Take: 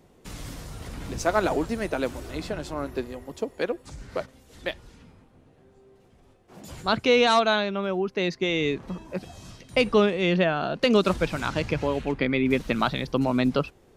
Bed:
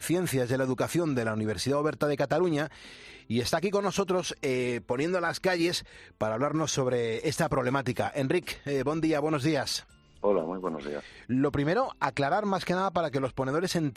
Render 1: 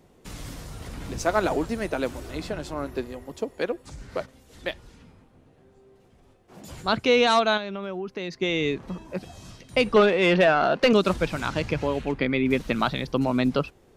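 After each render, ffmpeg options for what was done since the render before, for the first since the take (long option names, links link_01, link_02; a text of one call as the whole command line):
ffmpeg -i in.wav -filter_complex "[0:a]asettb=1/sr,asplit=3[link_01][link_02][link_03];[link_01]atrim=end=7.574[link_04];[link_02]atrim=start=7.57:end=8.39,asetpts=PTS-STARTPTS,afade=type=in:duration=0.004:curve=qsin,afade=type=out:start_time=0.816:duration=0.004:curve=qsin,acompressor=threshold=-29dB:ratio=3:attack=3.2:release=140:knee=1:detection=peak[link_05];[link_03]atrim=start=8.386[link_06];[link_04][link_05]acrossfade=duration=0.004:curve1=hsin:curve2=qsin[link_07];[link_07][link_06]acrossfade=duration=0.004:curve1=qsin:curve2=hsin,asettb=1/sr,asplit=3[link_08][link_09][link_10];[link_08]atrim=end=9.964[link_11];[link_09]atrim=start=9.96:end=10.93,asetpts=PTS-STARTPTS,afade=type=in:duration=0.004:curve=qsin,afade=type=out:start_time=0.966:duration=0.004:curve=qsin,asplit=2[link_12][link_13];[link_13]highpass=frequency=720:poles=1,volume=17dB,asoftclip=type=tanh:threshold=-7dB[link_14];[link_12][link_14]amix=inputs=2:normalize=0,lowpass=frequency=2000:poles=1,volume=-6dB[link_15];[link_10]atrim=start=10.926[link_16];[link_11][link_15]acrossfade=duration=0.004:curve1=hsin:curve2=qsin[link_17];[link_17][link_16]acrossfade=duration=0.004:curve1=qsin:curve2=hsin" out.wav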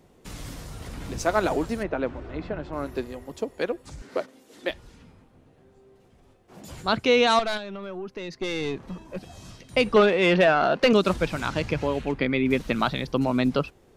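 ffmpeg -i in.wav -filter_complex "[0:a]asplit=3[link_01][link_02][link_03];[link_01]afade=type=out:start_time=1.82:duration=0.02[link_04];[link_02]lowpass=2100,afade=type=in:start_time=1.82:duration=0.02,afade=type=out:start_time=2.72:duration=0.02[link_05];[link_03]afade=type=in:start_time=2.72:duration=0.02[link_06];[link_04][link_05][link_06]amix=inputs=3:normalize=0,asettb=1/sr,asplit=3[link_07][link_08][link_09];[link_07]atrim=end=4.024[link_10];[link_08]atrim=start=4.02:end=4.7,asetpts=PTS-STARTPTS,afade=type=in:duration=0.004:curve=qsin,afade=type=out:start_time=0.676:duration=0.004:curve=qsin,highpass=frequency=290:width_type=q:width=1.7[link_11];[link_09]atrim=start=4.696[link_12];[link_10][link_11]acrossfade=duration=0.004:curve1=hsin:curve2=qsin[link_13];[link_13][link_12]acrossfade=duration=0.004:curve1=qsin:curve2=hsin,asettb=1/sr,asplit=3[link_14][link_15][link_16];[link_14]atrim=end=7.394[link_17];[link_15]atrim=start=7.39:end=9.31,asetpts=PTS-STARTPTS,afade=type=in:duration=0.004:curve=qsin,afade=type=out:start_time=1.916:duration=0.004:curve=qsin,aeval=exprs='(tanh(12.6*val(0)+0.45)-tanh(0.45))/12.6':channel_layout=same[link_18];[link_16]atrim=start=9.306[link_19];[link_17][link_18]acrossfade=duration=0.004:curve1=hsin:curve2=qsin[link_20];[link_20][link_19]acrossfade=duration=0.004:curve1=qsin:curve2=hsin" out.wav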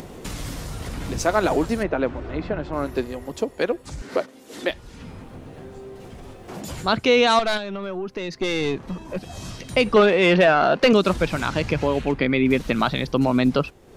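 ffmpeg -i in.wav -filter_complex "[0:a]asplit=2[link_01][link_02];[link_02]alimiter=limit=-16.5dB:level=0:latency=1:release=101,volume=-1.5dB[link_03];[link_01][link_03]amix=inputs=2:normalize=0,acompressor=mode=upward:threshold=-27dB:ratio=2.5" out.wav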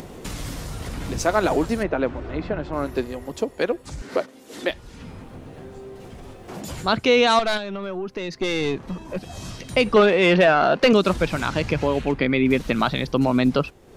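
ffmpeg -i in.wav -af anull out.wav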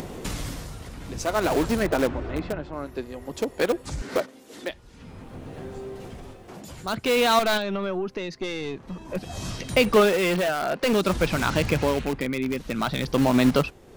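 ffmpeg -i in.wav -filter_complex "[0:a]tremolo=f=0.52:d=0.71,asplit=2[link_01][link_02];[link_02]aeval=exprs='(mod(11.2*val(0)+1,2)-1)/11.2':channel_layout=same,volume=-9dB[link_03];[link_01][link_03]amix=inputs=2:normalize=0" out.wav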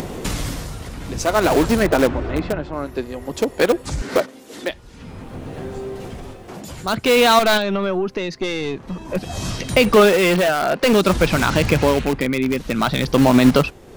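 ffmpeg -i in.wav -af "volume=7dB,alimiter=limit=-2dB:level=0:latency=1" out.wav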